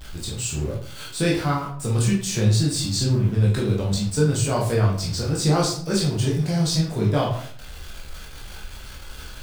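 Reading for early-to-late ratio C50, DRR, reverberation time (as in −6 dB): 5.5 dB, −4.5 dB, 0.55 s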